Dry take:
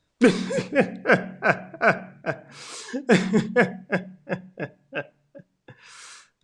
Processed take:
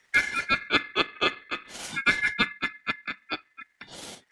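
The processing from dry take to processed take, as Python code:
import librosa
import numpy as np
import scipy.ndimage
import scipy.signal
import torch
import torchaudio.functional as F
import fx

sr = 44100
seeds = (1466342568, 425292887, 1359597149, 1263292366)

y = fx.stretch_grains(x, sr, factor=0.67, grain_ms=95.0)
y = y * np.sin(2.0 * np.pi * 1900.0 * np.arange(len(y)) / sr)
y = fx.band_squash(y, sr, depth_pct=40)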